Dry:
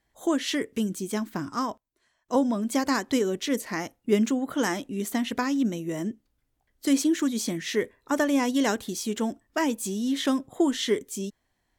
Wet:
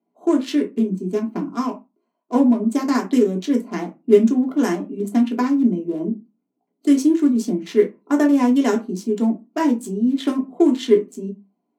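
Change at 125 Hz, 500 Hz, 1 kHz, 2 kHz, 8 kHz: +6.0, +8.5, +3.5, −1.5, −4.5 decibels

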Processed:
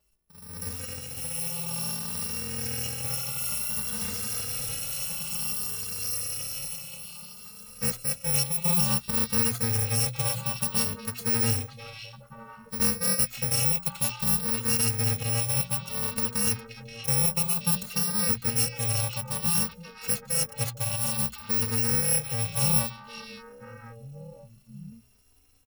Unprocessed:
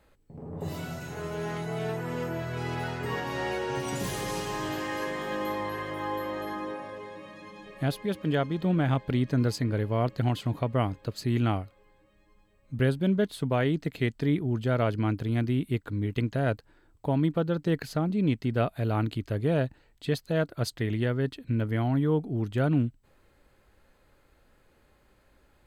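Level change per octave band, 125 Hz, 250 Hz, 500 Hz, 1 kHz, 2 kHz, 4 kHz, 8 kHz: −4.0, −7.0, −8.5, −4.0, −1.0, +9.0, +21.0 decibels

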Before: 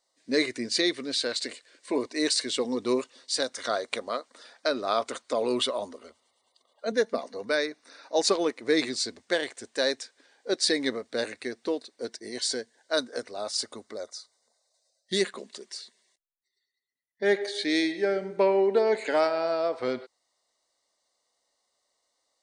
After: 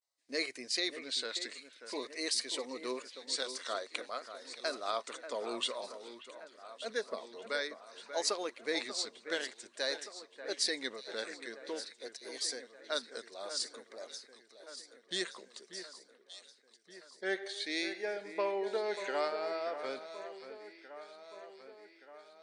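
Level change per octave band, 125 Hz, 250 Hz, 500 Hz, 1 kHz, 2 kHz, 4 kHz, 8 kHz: below −15 dB, −14.5 dB, −11.5 dB, −8.0 dB, −7.0 dB, −6.5 dB, −6.0 dB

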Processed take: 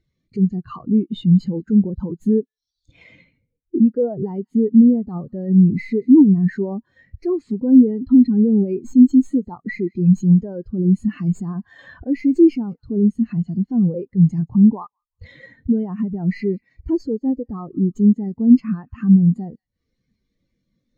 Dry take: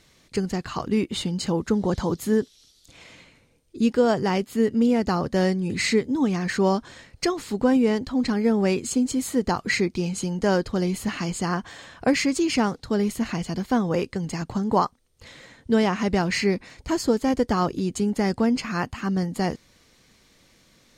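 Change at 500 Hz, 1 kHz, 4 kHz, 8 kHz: −1.0 dB, below −10 dB, below −15 dB, below −15 dB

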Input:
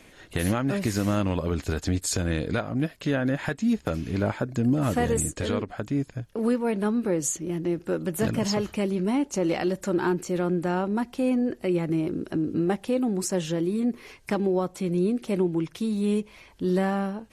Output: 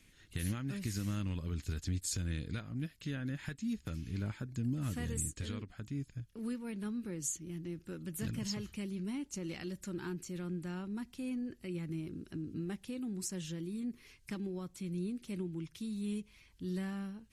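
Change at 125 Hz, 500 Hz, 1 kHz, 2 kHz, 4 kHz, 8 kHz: −9.5, −20.0, −21.5, −14.5, −10.5, −9.0 decibels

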